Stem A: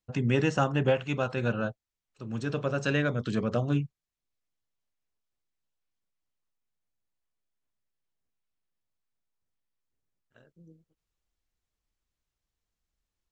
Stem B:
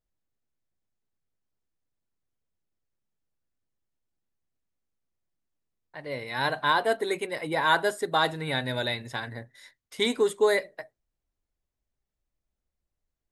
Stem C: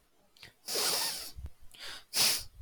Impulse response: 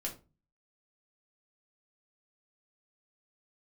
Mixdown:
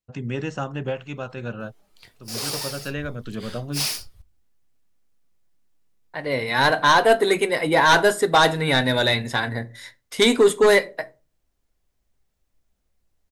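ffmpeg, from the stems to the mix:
-filter_complex "[0:a]volume=-3dB[a];[1:a]aeval=exprs='0.316*sin(PI/2*2*val(0)/0.316)':c=same,adelay=200,volume=-1.5dB,asplit=2[b][c];[c]volume=-8.5dB[d];[2:a]adelay=1600,volume=0.5dB,asplit=2[e][f];[f]volume=-13dB[g];[3:a]atrim=start_sample=2205[h];[d][g]amix=inputs=2:normalize=0[i];[i][h]afir=irnorm=-1:irlink=0[j];[a][b][e][j]amix=inputs=4:normalize=0"

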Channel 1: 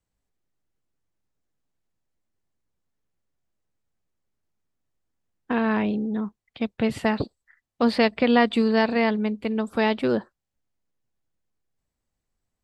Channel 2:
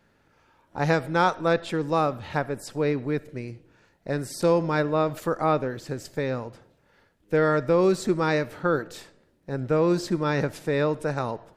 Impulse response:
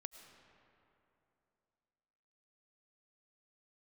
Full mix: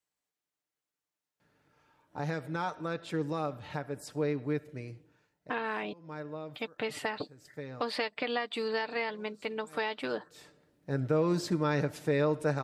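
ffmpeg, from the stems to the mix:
-filter_complex "[0:a]highpass=f=830:p=1,acompressor=threshold=-26dB:ratio=12,volume=-2dB,asplit=3[a][b][c];[a]atrim=end=5.93,asetpts=PTS-STARTPTS,afade=t=out:st=5.926:d=0.004:c=hsin[d];[b]atrim=start=5.93:end=6.5,asetpts=PTS-STARTPTS,volume=0[e];[c]atrim=start=6.5,asetpts=PTS-STARTPTS,afade=t=in:d=0.004:c=hsin[f];[d][e][f]concat=n=3:v=0:a=1,asplit=2[g][h];[1:a]highpass=52,alimiter=limit=-16dB:level=0:latency=1:release=242,adelay=1400,volume=4.5dB,afade=t=out:st=5.03:d=0.25:silence=0.398107,afade=t=in:st=10:d=0.77:silence=0.266073[i];[h]apad=whole_len=571678[j];[i][j]sidechaincompress=threshold=-54dB:ratio=5:attack=16:release=177[k];[g][k]amix=inputs=2:normalize=0,aecho=1:1:6.7:0.41"

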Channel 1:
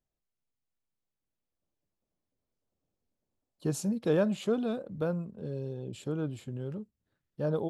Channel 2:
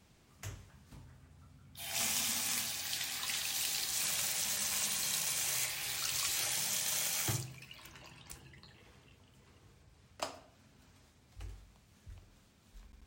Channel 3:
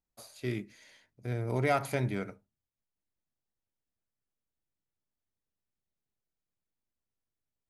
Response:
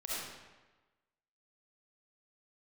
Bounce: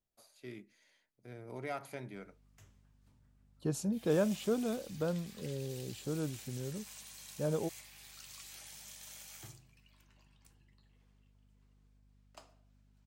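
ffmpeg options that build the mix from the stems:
-filter_complex "[0:a]volume=-3.5dB[a];[1:a]aeval=exprs='val(0)+0.00355*(sin(2*PI*50*n/s)+sin(2*PI*2*50*n/s)/2+sin(2*PI*3*50*n/s)/3+sin(2*PI*4*50*n/s)/4+sin(2*PI*5*50*n/s)/5)':c=same,adelay=2150,volume=-16.5dB[b];[2:a]highpass=160,volume=-12dB[c];[a][b][c]amix=inputs=3:normalize=0"

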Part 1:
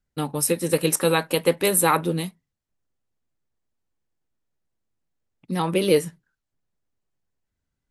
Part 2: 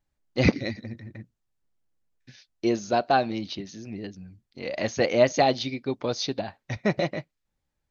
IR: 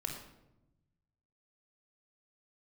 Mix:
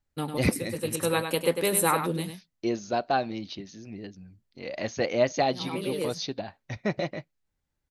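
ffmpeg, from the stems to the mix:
-filter_complex "[0:a]volume=-5dB,asplit=2[a][b];[b]volume=-8dB[c];[1:a]volume=-4dB,asplit=2[d][e];[e]apad=whole_len=348626[f];[a][f]sidechaincompress=threshold=-39dB:ratio=8:attack=16:release=390[g];[c]aecho=0:1:100:1[h];[g][d][h]amix=inputs=3:normalize=0"

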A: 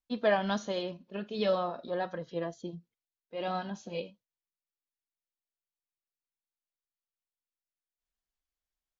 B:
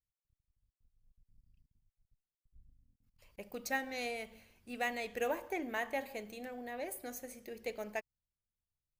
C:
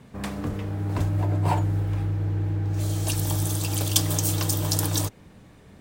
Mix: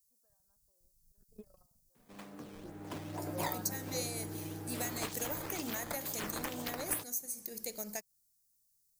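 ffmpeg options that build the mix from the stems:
-filter_complex "[0:a]lowpass=f=1.5k:w=0.5412,lowpass=f=1.5k:w=1.3066,aemphasis=mode=production:type=bsi,acompressor=threshold=-33dB:ratio=6,volume=-4dB[a];[1:a]aexciter=amount=8.3:drive=7.8:freq=4.4k,acompressor=threshold=-36dB:ratio=3,equalizer=f=180:t=o:w=0.86:g=9,volume=-1.5dB,asplit=2[b][c];[2:a]highpass=210,dynaudnorm=f=230:g=9:m=11.5dB,acrusher=samples=9:mix=1:aa=0.000001:lfo=1:lforange=14.4:lforate=2.1,adelay=1950,volume=-16dB[d];[c]apad=whole_len=396777[e];[a][e]sidechaingate=range=-42dB:threshold=-60dB:ratio=16:detection=peak[f];[f][d]amix=inputs=2:normalize=0,alimiter=level_in=2.5dB:limit=-24dB:level=0:latency=1:release=465,volume=-2.5dB,volume=0dB[g];[b][g]amix=inputs=2:normalize=0,equalizer=f=87:t=o:w=0.36:g=-5.5"

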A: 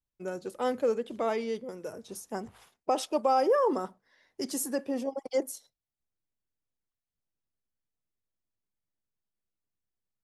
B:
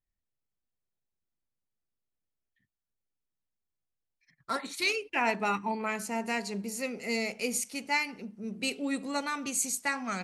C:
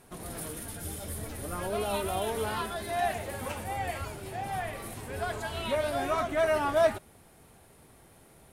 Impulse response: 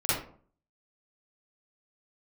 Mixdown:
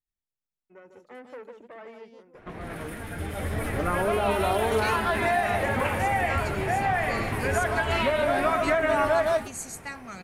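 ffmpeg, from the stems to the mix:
-filter_complex "[0:a]aeval=exprs='(tanh(28.2*val(0)+0.7)-tanh(0.7))/28.2':c=same,highpass=120,adelay=500,volume=-10dB,asplit=2[a][b];[b]volume=-6dB[c];[1:a]acontrast=89,volume=-14dB[d];[2:a]dynaudnorm=f=130:g=17:m=9dB,adelay=2350,volume=3dB,asplit=2[e][f];[f]volume=-13dB[g];[a][e]amix=inputs=2:normalize=0,lowpass=f=2.1k:t=q:w=1.8,acompressor=threshold=-22dB:ratio=6,volume=0dB[h];[c][g]amix=inputs=2:normalize=0,aecho=0:1:151:1[i];[d][h][i]amix=inputs=3:normalize=0"

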